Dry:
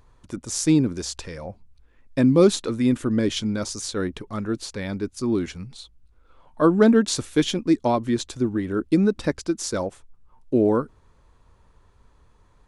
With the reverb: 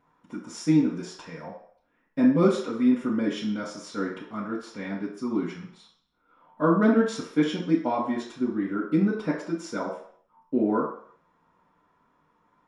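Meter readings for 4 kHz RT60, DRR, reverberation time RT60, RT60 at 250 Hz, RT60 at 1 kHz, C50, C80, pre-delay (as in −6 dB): 0.60 s, −11.0 dB, 0.60 s, 0.45 s, 0.60 s, 5.0 dB, 9.0 dB, 3 ms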